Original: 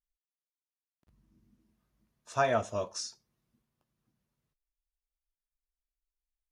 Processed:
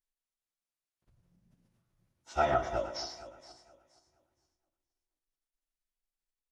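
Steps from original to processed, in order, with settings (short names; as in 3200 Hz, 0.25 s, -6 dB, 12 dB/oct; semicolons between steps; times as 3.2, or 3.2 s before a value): regenerating reverse delay 0.235 s, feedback 47%, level -11.5 dB; echo 0.114 s -12.5 dB; formant-preserving pitch shift -10.5 st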